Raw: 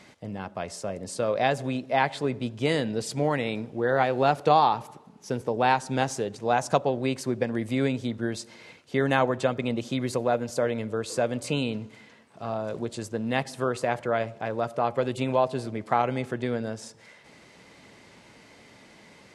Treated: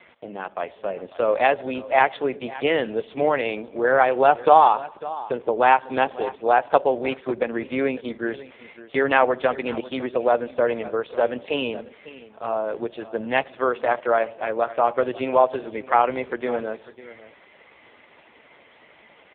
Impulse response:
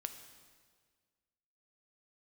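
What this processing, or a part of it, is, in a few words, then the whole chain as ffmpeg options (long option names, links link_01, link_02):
satellite phone: -af "highpass=380,lowpass=3200,equalizer=frequency=3700:width_type=o:width=0.93:gain=3.5,aecho=1:1:548:0.141,volume=7.5dB" -ar 8000 -c:a libopencore_amrnb -b:a 5150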